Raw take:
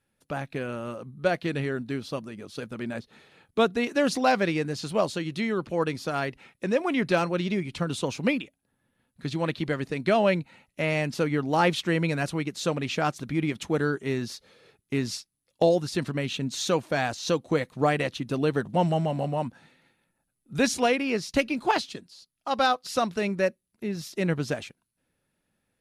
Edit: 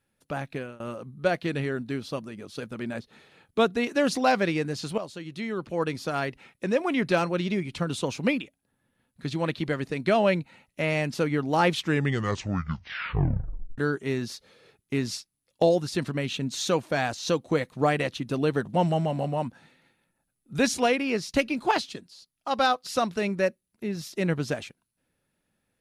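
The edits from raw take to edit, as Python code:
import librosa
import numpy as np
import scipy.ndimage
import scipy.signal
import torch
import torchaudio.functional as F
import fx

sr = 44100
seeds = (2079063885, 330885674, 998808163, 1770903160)

y = fx.edit(x, sr, fx.fade_out_to(start_s=0.53, length_s=0.27, floor_db=-23.0),
    fx.fade_in_from(start_s=4.98, length_s=1.01, floor_db=-12.5),
    fx.tape_stop(start_s=11.74, length_s=2.04), tone=tone)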